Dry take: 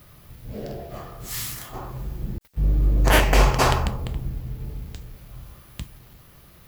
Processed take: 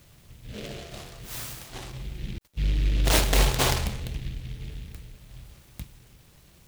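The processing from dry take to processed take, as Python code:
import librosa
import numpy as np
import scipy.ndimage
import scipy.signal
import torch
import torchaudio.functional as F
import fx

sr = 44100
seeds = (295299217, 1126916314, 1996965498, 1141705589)

y = fx.noise_mod_delay(x, sr, seeds[0], noise_hz=2700.0, depth_ms=0.2)
y = y * librosa.db_to_amplitude(-4.5)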